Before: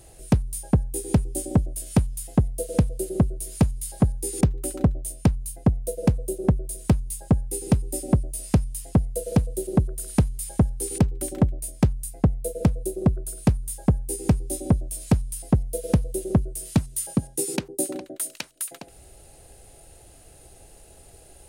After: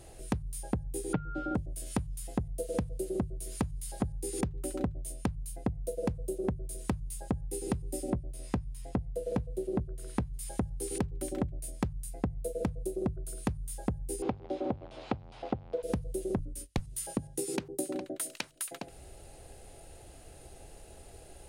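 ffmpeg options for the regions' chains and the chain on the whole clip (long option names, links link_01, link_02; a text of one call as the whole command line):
ffmpeg -i in.wav -filter_complex "[0:a]asettb=1/sr,asplit=3[link_01][link_02][link_03];[link_01]atrim=end=1.134[link_04];[link_02]atrim=start=1.13:end=1.55,asetpts=PTS-STARTPTS,afade=type=in:duration=0.004:curve=qsin,afade=type=out:start_time=0.416:duration=0.004:curve=qsin,lowpass=frequency=3300:width=0.5412,lowpass=frequency=3300:width=1.3066,aeval=exprs='val(0)+0.0126*sin(2*PI*1400*n/s)':channel_layout=same,aecho=1:1:6.5:0.96,atrim=end_sample=18522[link_05];[link_03]atrim=start=1.546[link_06];[link_04][link_05]acrossfade=duration=0.004:curve1=hsin:curve2=qsin[link_07];[link_07][link_06]acrossfade=duration=0.004:curve1=qsin:curve2=hsin,asettb=1/sr,asplit=3[link_08][link_09][link_10];[link_08]atrim=end=8.104[link_11];[link_09]atrim=start=8.1:end=10.34,asetpts=PTS-STARTPTS,afade=type=in:duration=0.004:curve=qsin,afade=type=out:start_time=2.236:duration=0.004:curve=qsin,highshelf=frequency=4500:gain=-11,asplit=2[link_12][link_13];[link_13]adelay=16,volume=-13dB[link_14];[link_12][link_14]amix=inputs=2:normalize=0,atrim=end_sample=98784[link_15];[link_10]atrim=start=10.336[link_16];[link_11][link_15]acrossfade=duration=0.004:curve1=hsin:curve2=qsin[link_17];[link_17][link_16]acrossfade=duration=0.004:curve1=qsin:curve2=hsin,asettb=1/sr,asplit=3[link_18][link_19][link_20];[link_18]atrim=end=14.224[link_21];[link_19]atrim=start=14.22:end=15.83,asetpts=PTS-STARTPTS,afade=type=in:duration=0.004:curve=qsin,afade=type=out:start_time=1.606:duration=0.004:curve=qsin,aeval=exprs='val(0)+0.5*0.0178*sgn(val(0))':channel_layout=same,highpass=120,equalizer=frequency=160:width_type=q:width=4:gain=-8,equalizer=frequency=540:width_type=q:width=4:gain=5,equalizer=frequency=790:width_type=q:width=4:gain=9,equalizer=frequency=1800:width_type=q:width=4:gain=-4,lowpass=frequency=3800:width=0.5412,lowpass=frequency=3800:width=1.3066[link_22];[link_20]atrim=start=15.826[link_23];[link_21][link_22]acrossfade=duration=0.004:curve1=hsin:curve2=qsin[link_24];[link_24][link_23]acrossfade=duration=0.004:curve1=qsin:curve2=hsin,asettb=1/sr,asplit=3[link_25][link_26][link_27];[link_25]atrim=end=16.384[link_28];[link_26]atrim=start=16.38:end=16.82,asetpts=PTS-STARTPTS,afade=type=in:duration=0.004:curve=qsin,afade=type=out:start_time=0.436:duration=0.004:curve=qsin,agate=range=-31dB:threshold=-36dB:ratio=16:release=100:detection=peak,afreqshift=-83[link_29];[link_27]atrim=start=16.816[link_30];[link_28][link_29]acrossfade=duration=0.004:curve1=hsin:curve2=qsin[link_31];[link_31][link_30]acrossfade=duration=0.004:curve1=qsin:curve2=hsin,highshelf=frequency=6700:gain=-8.5,bandreject=frequency=50:width_type=h:width=6,bandreject=frequency=100:width_type=h:width=6,bandreject=frequency=150:width_type=h:width=6,acompressor=threshold=-30dB:ratio=6" out.wav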